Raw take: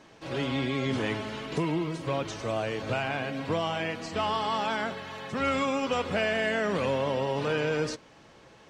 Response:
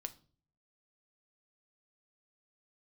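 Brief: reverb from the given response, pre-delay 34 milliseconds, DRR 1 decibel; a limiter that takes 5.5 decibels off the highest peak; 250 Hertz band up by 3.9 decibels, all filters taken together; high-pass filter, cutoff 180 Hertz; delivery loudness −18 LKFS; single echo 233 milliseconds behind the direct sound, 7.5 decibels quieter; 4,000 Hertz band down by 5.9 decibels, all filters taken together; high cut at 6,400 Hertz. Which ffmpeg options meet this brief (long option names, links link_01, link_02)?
-filter_complex "[0:a]highpass=180,lowpass=6400,equalizer=frequency=250:width_type=o:gain=6,equalizer=frequency=4000:width_type=o:gain=-8.5,alimiter=limit=-21.5dB:level=0:latency=1,aecho=1:1:233:0.422,asplit=2[link_01][link_02];[1:a]atrim=start_sample=2205,adelay=34[link_03];[link_02][link_03]afir=irnorm=-1:irlink=0,volume=2dB[link_04];[link_01][link_04]amix=inputs=2:normalize=0,volume=9.5dB"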